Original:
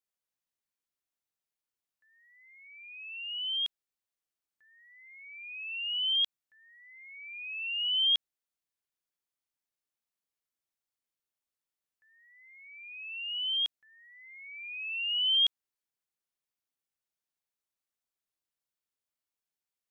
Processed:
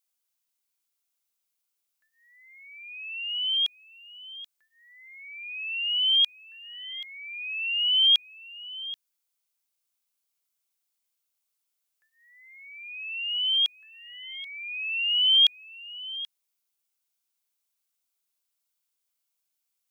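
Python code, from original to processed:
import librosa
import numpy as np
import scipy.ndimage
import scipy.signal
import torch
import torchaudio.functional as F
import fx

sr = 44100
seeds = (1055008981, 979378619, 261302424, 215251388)

y = fx.tilt_eq(x, sr, slope=2.5)
y = fx.notch(y, sr, hz=1800.0, q=8.6)
y = y + 10.0 ** (-16.5 / 20.0) * np.pad(y, (int(782 * sr / 1000.0), 0))[:len(y)]
y = y * 10.0 ** (2.5 / 20.0)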